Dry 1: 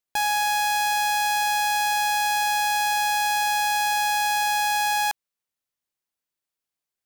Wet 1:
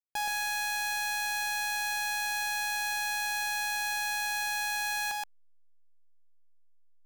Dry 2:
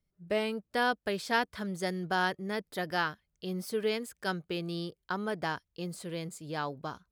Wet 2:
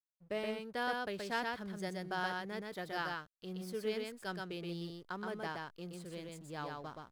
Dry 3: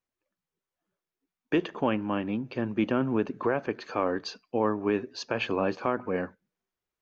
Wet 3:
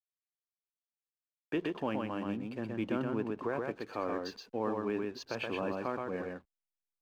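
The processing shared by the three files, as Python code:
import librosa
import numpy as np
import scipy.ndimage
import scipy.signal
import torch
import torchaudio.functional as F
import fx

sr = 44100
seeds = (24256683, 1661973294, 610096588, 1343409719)

p1 = fx.backlash(x, sr, play_db=-46.0)
p2 = p1 + fx.echo_single(p1, sr, ms=124, db=-3.0, dry=0)
y = F.gain(torch.from_numpy(p2), -8.5).numpy()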